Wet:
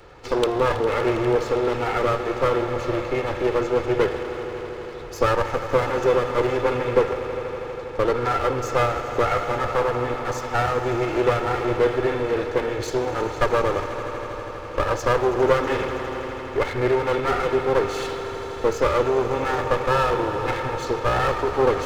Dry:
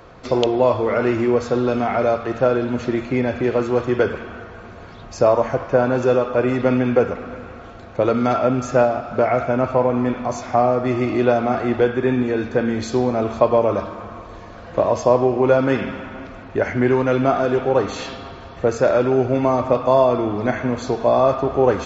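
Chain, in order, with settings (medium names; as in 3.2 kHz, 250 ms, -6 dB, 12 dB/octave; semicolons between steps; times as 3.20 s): comb filter that takes the minimum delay 2.3 ms; echo with a slow build-up 81 ms, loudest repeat 5, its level -16.5 dB; trim -1.5 dB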